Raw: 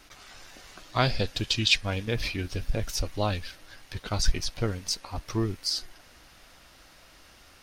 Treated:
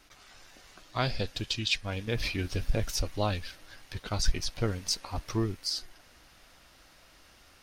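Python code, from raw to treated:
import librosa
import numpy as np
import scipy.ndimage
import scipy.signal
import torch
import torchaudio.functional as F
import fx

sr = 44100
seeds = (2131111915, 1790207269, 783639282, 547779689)

y = fx.rider(x, sr, range_db=4, speed_s=0.5)
y = y * librosa.db_to_amplitude(-3.0)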